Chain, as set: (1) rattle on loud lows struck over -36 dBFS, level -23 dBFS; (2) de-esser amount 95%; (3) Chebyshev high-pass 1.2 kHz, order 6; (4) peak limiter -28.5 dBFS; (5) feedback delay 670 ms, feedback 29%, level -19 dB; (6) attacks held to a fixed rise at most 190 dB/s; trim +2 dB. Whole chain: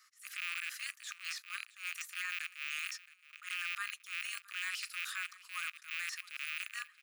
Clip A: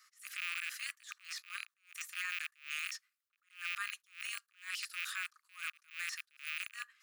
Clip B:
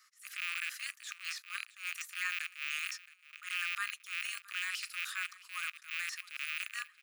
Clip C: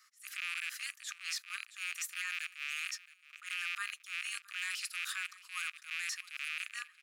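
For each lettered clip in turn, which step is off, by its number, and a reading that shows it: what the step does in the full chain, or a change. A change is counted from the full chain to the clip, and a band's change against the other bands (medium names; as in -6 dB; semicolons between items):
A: 5, momentary loudness spread change +3 LU; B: 4, crest factor change +4.0 dB; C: 2, 8 kHz band +3.0 dB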